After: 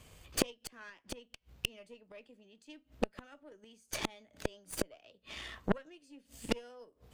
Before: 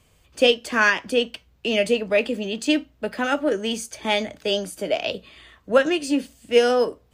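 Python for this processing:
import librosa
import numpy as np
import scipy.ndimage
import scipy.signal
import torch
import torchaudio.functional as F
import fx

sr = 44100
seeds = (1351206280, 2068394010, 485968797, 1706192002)

y = fx.gate_flip(x, sr, shuts_db=-22.0, range_db=-35)
y = fx.cheby_harmonics(y, sr, harmonics=(3, 8), levels_db=(-15, -20), full_scale_db=-19.0)
y = y * 10.0 ** (8.5 / 20.0)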